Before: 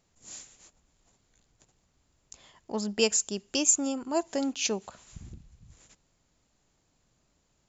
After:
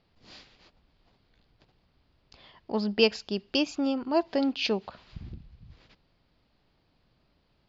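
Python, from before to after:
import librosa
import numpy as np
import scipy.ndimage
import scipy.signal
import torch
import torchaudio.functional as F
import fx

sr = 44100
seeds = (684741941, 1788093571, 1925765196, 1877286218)

y = scipy.signal.sosfilt(scipy.signal.cheby1(5, 1.0, 4800.0, 'lowpass', fs=sr, output='sos'), x)
y = y * 10.0 ** (3.5 / 20.0)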